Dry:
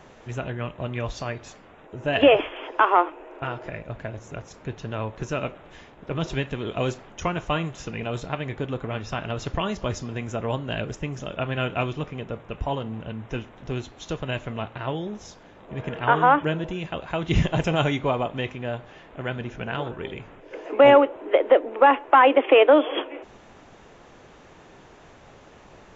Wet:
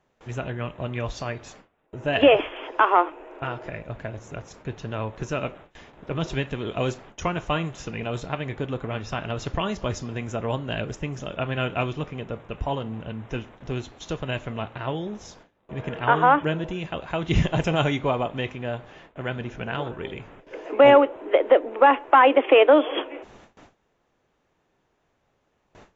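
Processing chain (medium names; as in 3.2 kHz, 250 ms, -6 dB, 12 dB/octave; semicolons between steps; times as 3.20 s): gate with hold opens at -37 dBFS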